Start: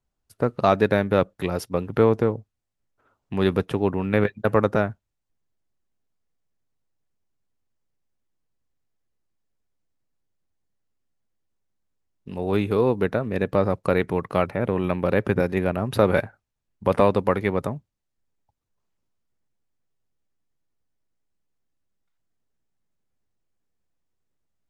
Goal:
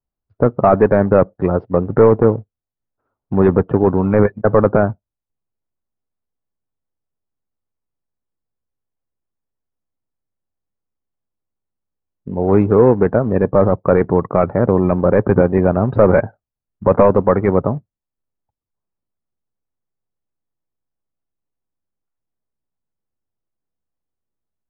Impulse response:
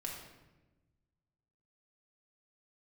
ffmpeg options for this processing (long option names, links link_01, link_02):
-af "aresample=11025,acrusher=bits=3:mode=log:mix=0:aa=0.000001,aresample=44100,apsyclip=11.5dB,lowpass=1200,afftdn=noise_reduction=16:noise_floor=-31,volume=-1.5dB"